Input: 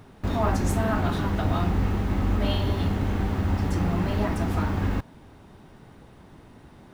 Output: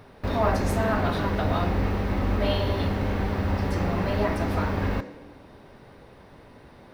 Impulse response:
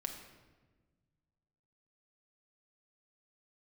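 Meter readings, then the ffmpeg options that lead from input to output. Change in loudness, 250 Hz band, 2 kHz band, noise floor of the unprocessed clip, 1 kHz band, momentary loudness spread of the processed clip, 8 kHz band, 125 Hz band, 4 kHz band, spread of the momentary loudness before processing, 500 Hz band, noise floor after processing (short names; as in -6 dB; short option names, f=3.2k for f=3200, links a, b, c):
0.0 dB, -1.0 dB, +3.0 dB, -50 dBFS, +2.0 dB, 3 LU, -3.0 dB, -1.5 dB, +1.0 dB, 2 LU, +4.0 dB, -50 dBFS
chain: -filter_complex "[0:a]asplit=2[a][b];[b]highpass=370,equalizer=f=510:t=q:w=4:g=9,equalizer=f=800:t=q:w=4:g=-7,equalizer=f=1.3k:t=q:w=4:g=-7,equalizer=f=3.3k:t=q:w=4:g=-9,lowpass=f=6.5k:w=0.5412,lowpass=f=6.5k:w=1.3066[c];[1:a]atrim=start_sample=2205,highshelf=f=7.5k:g=6[d];[c][d]afir=irnorm=-1:irlink=0,volume=0.5dB[e];[a][e]amix=inputs=2:normalize=0,volume=-1.5dB"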